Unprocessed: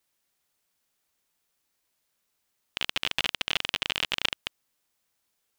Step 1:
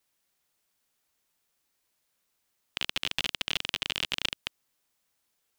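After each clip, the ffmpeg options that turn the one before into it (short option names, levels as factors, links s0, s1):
-filter_complex "[0:a]acrossover=split=410|3000[s0][s1][s2];[s1]acompressor=threshold=0.0251:ratio=6[s3];[s0][s3][s2]amix=inputs=3:normalize=0"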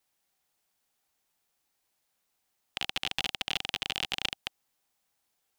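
-af "equalizer=f=780:t=o:w=0.26:g=7.5,volume=0.841"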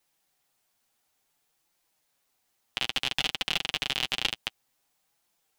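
-af "flanger=delay=5.6:depth=3.3:regen=-16:speed=0.57:shape=triangular,volume=2.24"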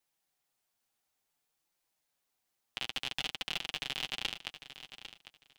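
-af "aecho=1:1:800|1600:0.237|0.0451,volume=0.398"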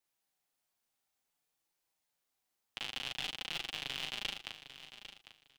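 -filter_complex "[0:a]asplit=2[s0][s1];[s1]adelay=38,volume=0.708[s2];[s0][s2]amix=inputs=2:normalize=0,volume=0.631"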